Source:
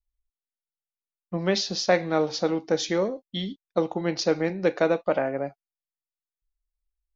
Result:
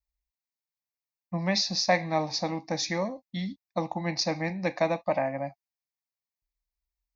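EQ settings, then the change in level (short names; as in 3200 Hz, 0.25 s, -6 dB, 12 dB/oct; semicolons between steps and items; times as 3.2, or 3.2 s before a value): HPF 48 Hz; fixed phaser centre 2100 Hz, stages 8; +2.0 dB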